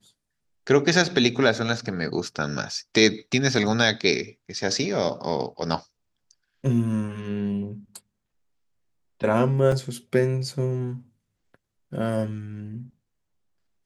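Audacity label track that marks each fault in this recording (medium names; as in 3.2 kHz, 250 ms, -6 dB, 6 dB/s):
9.720000	9.720000	dropout 2.5 ms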